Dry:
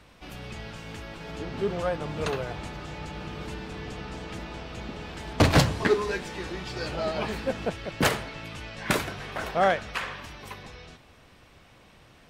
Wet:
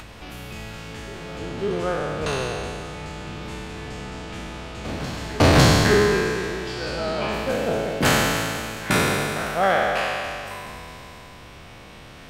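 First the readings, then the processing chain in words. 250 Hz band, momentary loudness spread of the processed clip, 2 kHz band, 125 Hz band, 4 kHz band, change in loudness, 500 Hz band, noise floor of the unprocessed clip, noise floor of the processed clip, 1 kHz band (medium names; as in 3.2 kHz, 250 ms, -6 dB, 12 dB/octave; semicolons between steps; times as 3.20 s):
+6.5 dB, 19 LU, +7.0 dB, +6.0 dB, +7.0 dB, +7.5 dB, +6.0 dB, -55 dBFS, -43 dBFS, +6.0 dB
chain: spectral sustain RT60 2.41 s; reverse echo 553 ms -18 dB; upward compressor, threshold -33 dBFS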